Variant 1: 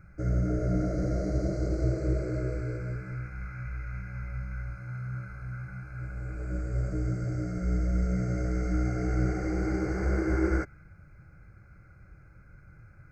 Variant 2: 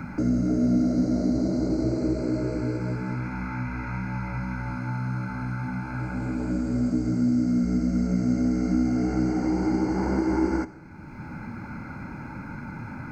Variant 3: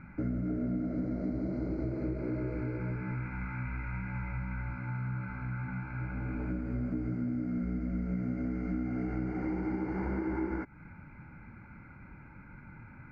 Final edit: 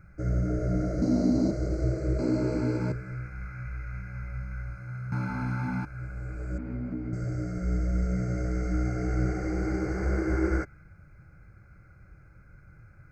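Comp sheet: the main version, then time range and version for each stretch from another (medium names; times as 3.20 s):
1
1.02–1.51 s: from 2
2.19–2.92 s: from 2
5.12–5.85 s: from 2
6.58–7.13 s: from 3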